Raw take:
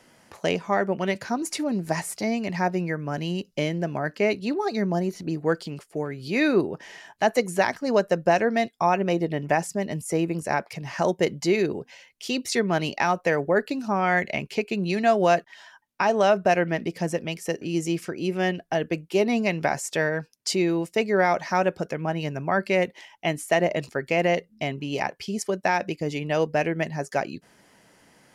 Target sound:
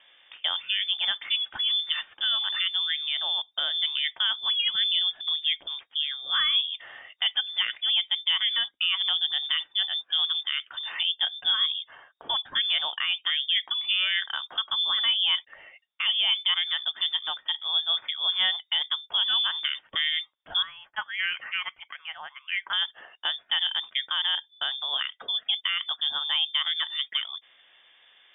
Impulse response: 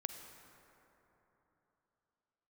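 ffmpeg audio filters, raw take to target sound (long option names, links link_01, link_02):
-filter_complex "[0:a]asettb=1/sr,asplit=3[link_01][link_02][link_03];[link_01]atrim=end=20.624[link_04];[link_02]atrim=start=20.62:end=22.73,asetpts=PTS-STARTPTS,afade=type=in:duration=0.004:curve=qsin,afade=type=out:start_time=2.106:duration=0.004:curve=qsin,highpass=1400[link_05];[link_03]atrim=start=22.726[link_06];[link_04][link_05]acrossfade=duration=0.004:curve1=hsin:curve2=qsin[link_07];[link_07][link_06]acrossfade=duration=0.004:curve1=qsin:curve2=hsin,alimiter=limit=-15.5dB:level=0:latency=1:release=200,lowpass=frequency=3100:width_type=q:width=0.5098,lowpass=frequency=3100:width_type=q:width=0.6013,lowpass=frequency=3100:width_type=q:width=0.9,lowpass=frequency=3100:width_type=q:width=2.563,afreqshift=-3700"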